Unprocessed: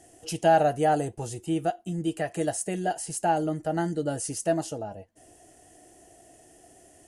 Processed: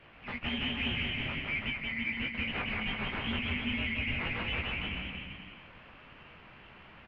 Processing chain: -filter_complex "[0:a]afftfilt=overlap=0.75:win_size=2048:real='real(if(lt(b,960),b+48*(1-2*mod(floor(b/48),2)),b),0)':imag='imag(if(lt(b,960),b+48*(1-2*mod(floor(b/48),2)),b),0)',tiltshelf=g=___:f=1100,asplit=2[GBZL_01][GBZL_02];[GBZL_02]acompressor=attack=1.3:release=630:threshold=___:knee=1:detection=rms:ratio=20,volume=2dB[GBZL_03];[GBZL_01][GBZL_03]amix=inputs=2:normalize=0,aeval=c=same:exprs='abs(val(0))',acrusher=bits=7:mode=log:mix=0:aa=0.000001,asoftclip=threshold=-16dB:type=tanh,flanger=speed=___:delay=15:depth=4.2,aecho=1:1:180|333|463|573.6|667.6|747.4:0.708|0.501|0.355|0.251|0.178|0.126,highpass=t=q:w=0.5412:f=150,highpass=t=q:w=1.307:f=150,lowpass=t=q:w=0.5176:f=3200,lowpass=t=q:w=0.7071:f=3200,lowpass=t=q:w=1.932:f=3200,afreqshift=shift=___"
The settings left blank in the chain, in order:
-8.5, -32dB, 1.3, -400